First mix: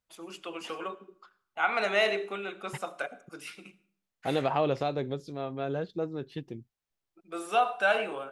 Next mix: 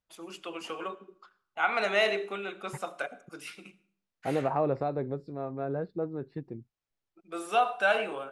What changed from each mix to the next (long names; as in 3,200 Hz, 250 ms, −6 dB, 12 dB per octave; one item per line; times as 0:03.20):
second voice: add moving average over 14 samples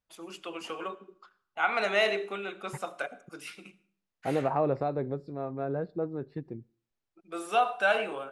second voice: send on